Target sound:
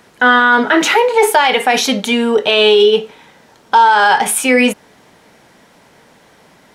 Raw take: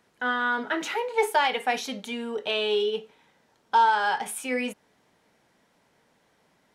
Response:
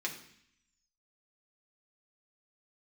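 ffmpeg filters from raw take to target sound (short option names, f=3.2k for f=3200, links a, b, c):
-af "alimiter=level_in=19.5dB:limit=-1dB:release=50:level=0:latency=1,volume=-1dB"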